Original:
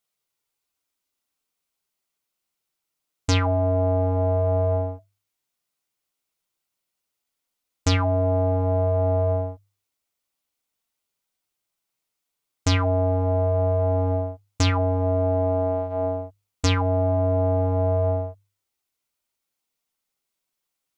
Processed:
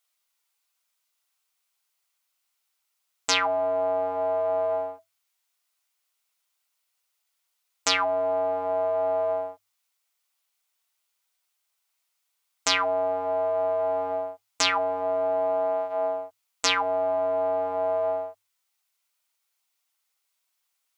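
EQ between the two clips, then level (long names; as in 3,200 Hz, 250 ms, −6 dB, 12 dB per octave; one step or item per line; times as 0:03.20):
high-pass filter 820 Hz 12 dB per octave
+5.0 dB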